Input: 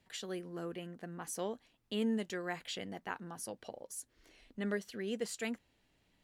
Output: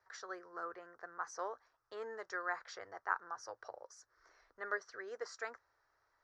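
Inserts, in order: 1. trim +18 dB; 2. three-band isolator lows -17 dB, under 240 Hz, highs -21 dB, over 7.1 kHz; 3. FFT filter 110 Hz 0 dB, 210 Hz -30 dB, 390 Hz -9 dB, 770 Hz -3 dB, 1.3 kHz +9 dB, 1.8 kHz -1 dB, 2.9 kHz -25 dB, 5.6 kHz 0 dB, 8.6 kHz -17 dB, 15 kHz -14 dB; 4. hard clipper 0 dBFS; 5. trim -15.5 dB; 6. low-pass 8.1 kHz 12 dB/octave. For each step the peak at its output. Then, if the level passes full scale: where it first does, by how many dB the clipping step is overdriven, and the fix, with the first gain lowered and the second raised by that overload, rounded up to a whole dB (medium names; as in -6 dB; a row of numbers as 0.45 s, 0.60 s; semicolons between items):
-5.0 dBFS, -5.5 dBFS, -3.0 dBFS, -3.0 dBFS, -18.5 dBFS, -18.5 dBFS; nothing clips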